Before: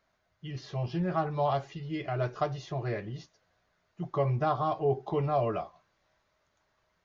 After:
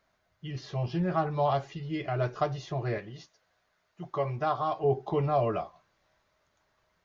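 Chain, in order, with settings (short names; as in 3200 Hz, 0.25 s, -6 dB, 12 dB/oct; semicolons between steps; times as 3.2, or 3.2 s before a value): 2.98–4.84 low shelf 370 Hz -8.5 dB; gain +1.5 dB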